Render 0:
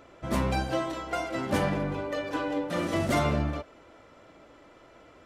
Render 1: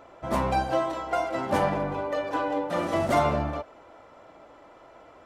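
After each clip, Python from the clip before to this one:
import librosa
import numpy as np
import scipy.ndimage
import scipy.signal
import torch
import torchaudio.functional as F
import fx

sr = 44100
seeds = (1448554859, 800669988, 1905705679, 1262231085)

y = fx.peak_eq(x, sr, hz=820.0, db=10.0, octaves=1.4)
y = y * librosa.db_to_amplitude(-2.5)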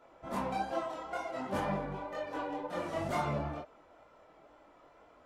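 y = fx.chorus_voices(x, sr, voices=6, hz=1.2, base_ms=23, depth_ms=3.7, mix_pct=50)
y = fx.wow_flutter(y, sr, seeds[0], rate_hz=2.1, depth_cents=29.0)
y = y * librosa.db_to_amplitude(-6.0)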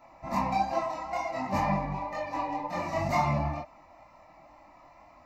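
y = fx.fixed_phaser(x, sr, hz=2200.0, stages=8)
y = y * librosa.db_to_amplitude(9.0)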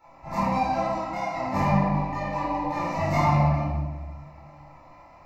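y = fx.room_shoebox(x, sr, seeds[1], volume_m3=800.0, walls='mixed', distance_m=4.3)
y = y * librosa.db_to_amplitude(-5.5)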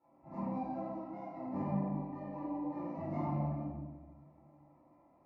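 y = fx.bandpass_q(x, sr, hz=300.0, q=1.7)
y = y * librosa.db_to_amplitude(-5.5)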